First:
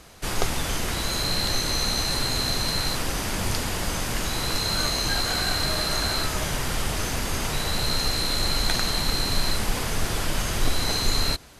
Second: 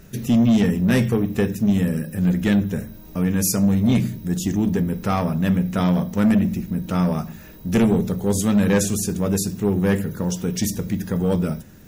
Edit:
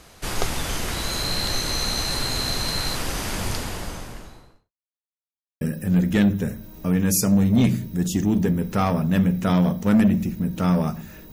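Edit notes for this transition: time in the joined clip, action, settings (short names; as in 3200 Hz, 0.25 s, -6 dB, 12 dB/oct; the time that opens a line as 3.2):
first
3.31–4.72 studio fade out
4.72–5.61 mute
5.61 switch to second from 1.92 s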